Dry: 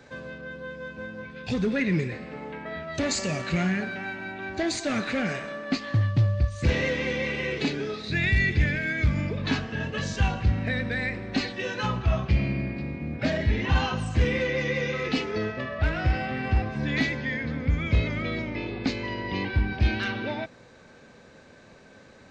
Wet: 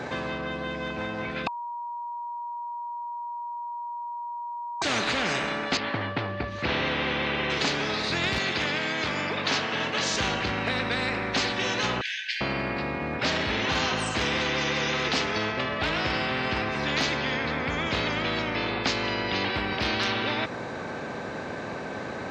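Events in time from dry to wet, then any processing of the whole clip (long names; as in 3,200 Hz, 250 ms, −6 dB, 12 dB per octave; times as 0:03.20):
0:01.47–0:04.82: beep over 953 Hz −17 dBFS
0:05.77–0:07.50: high-frequency loss of the air 270 metres
0:08.38–0:10.14: meter weighting curve A
0:12.01–0:12.41: linear-phase brick-wall high-pass 1,500 Hz
whole clip: high-pass filter 290 Hz 12 dB per octave; spectral tilt −4 dB per octave; every bin compressed towards the loudest bin 4 to 1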